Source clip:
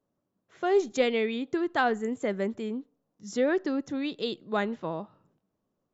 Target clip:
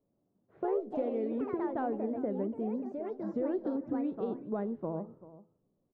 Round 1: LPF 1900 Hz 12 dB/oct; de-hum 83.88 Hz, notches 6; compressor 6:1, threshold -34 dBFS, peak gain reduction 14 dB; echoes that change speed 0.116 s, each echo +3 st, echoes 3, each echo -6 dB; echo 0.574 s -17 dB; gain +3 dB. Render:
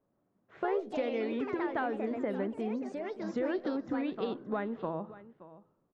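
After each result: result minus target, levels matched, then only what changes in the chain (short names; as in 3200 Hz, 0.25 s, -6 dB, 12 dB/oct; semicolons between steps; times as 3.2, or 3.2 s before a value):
2000 Hz band +11.5 dB; echo 0.187 s late
change: LPF 590 Hz 12 dB/oct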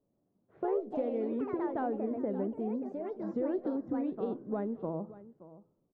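echo 0.187 s late
change: echo 0.387 s -17 dB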